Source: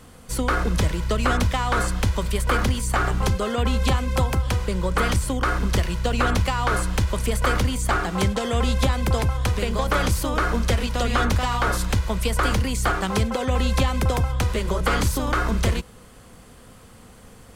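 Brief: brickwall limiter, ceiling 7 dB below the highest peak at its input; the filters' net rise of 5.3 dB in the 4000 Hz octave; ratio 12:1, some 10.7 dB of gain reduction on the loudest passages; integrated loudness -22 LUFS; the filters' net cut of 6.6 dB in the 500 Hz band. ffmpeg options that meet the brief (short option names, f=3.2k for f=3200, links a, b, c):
-af "equalizer=f=500:t=o:g=-8,equalizer=f=4k:t=o:g=7,acompressor=threshold=-27dB:ratio=12,volume=11.5dB,alimiter=limit=-11.5dB:level=0:latency=1"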